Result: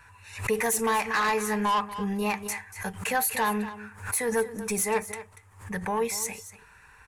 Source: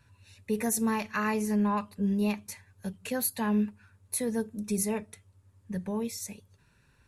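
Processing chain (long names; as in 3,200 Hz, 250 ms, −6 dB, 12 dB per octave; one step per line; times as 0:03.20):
octave-band graphic EQ 125/250/500/1,000/2,000/4,000/8,000 Hz −9/−8/−6/+9/+8/−6/+4 dB
in parallel at −0.5 dB: downward compressor, threshold −34 dBFS, peak gain reduction 14 dB
on the sum: soft clipping −24 dBFS, distortion −9 dB
hollow resonant body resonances 450/780 Hz, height 11 dB, ringing for 95 ms
on a send: single-tap delay 238 ms −14.5 dB
on the sum: background raised ahead of every attack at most 120 dB per second
level +2.5 dB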